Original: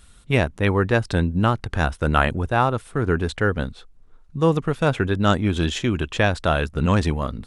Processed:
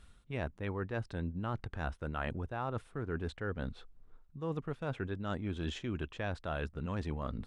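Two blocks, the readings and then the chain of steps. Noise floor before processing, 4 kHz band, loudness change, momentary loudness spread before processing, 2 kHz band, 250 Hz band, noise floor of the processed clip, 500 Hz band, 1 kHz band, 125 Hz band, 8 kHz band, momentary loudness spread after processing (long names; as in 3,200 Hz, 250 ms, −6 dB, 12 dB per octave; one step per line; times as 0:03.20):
−50 dBFS, −19.0 dB, −17.5 dB, 4 LU, −18.0 dB, −17.0 dB, −62 dBFS, −17.0 dB, −18.5 dB, −16.5 dB, below −20 dB, 3 LU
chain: low-pass filter 2,800 Hz 6 dB per octave
reversed playback
downward compressor 5 to 1, threshold −28 dBFS, peak gain reduction 14 dB
reversed playback
level −6.5 dB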